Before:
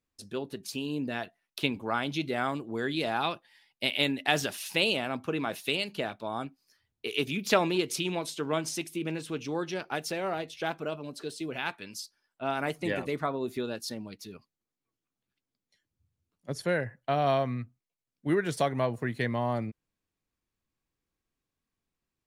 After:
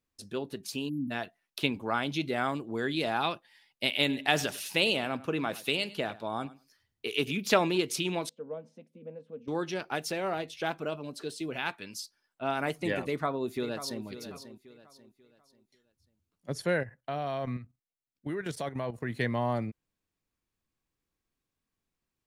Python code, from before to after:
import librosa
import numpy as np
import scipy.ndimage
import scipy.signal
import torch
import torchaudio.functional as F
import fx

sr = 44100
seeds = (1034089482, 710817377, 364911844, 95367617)

y = fx.spec_erase(x, sr, start_s=0.89, length_s=0.22, low_hz=310.0, high_hz=10000.0)
y = fx.echo_feedback(y, sr, ms=102, feedback_pct=15, wet_db=-19, at=(3.94, 7.32))
y = fx.double_bandpass(y, sr, hz=340.0, octaves=1.1, at=(8.29, 9.48))
y = fx.echo_throw(y, sr, start_s=13.03, length_s=1.0, ms=540, feedback_pct=35, wet_db=-12.0)
y = fx.level_steps(y, sr, step_db=11, at=(16.82, 19.1), fade=0.02)